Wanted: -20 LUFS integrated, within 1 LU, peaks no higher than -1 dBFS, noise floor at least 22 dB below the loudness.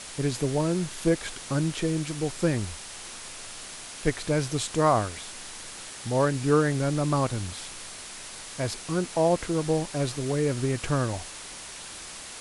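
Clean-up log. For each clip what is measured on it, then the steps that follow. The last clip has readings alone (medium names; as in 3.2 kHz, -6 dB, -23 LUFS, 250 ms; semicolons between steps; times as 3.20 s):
noise floor -41 dBFS; noise floor target -50 dBFS; loudness -28.0 LUFS; peak level -9.5 dBFS; loudness target -20.0 LUFS
-> noise reduction 9 dB, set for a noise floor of -41 dBFS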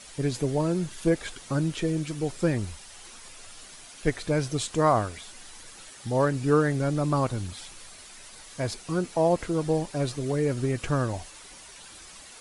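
noise floor -47 dBFS; noise floor target -50 dBFS
-> noise reduction 6 dB, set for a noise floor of -47 dBFS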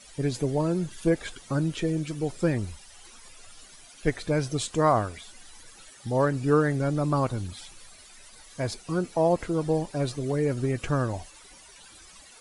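noise floor -51 dBFS; loudness -27.5 LUFS; peak level -10.0 dBFS; loudness target -20.0 LUFS
-> trim +7.5 dB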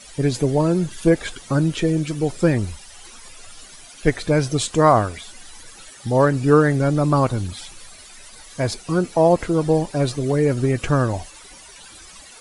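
loudness -20.0 LUFS; peak level -2.5 dBFS; noise floor -43 dBFS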